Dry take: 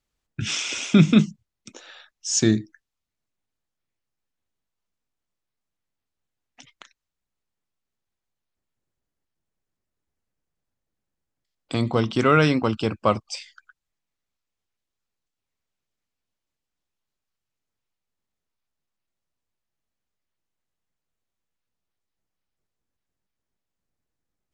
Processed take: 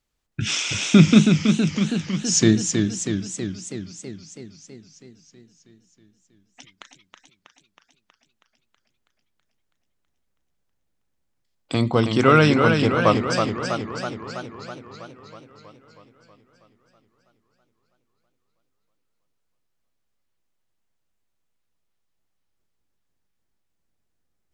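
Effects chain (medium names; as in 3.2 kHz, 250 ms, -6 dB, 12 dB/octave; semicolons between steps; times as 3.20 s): modulated delay 323 ms, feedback 66%, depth 101 cents, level -5.5 dB; trim +2.5 dB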